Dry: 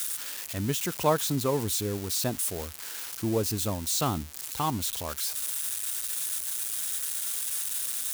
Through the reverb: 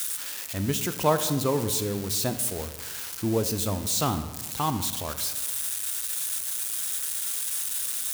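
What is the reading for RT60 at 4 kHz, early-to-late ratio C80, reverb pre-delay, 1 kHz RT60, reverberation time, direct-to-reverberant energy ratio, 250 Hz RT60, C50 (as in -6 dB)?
0.80 s, 13.0 dB, 21 ms, 1.2 s, 1.3 s, 10.0 dB, 1.6 s, 11.5 dB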